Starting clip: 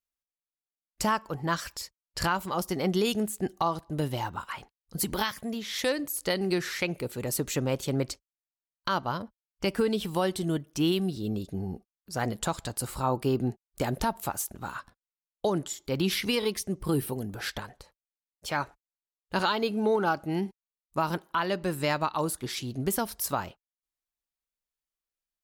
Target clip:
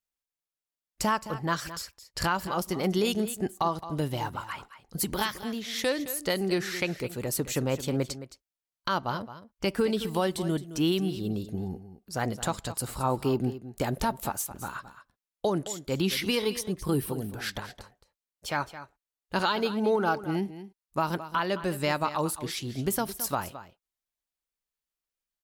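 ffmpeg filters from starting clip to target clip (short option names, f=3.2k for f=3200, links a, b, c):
-af "aecho=1:1:217:0.211"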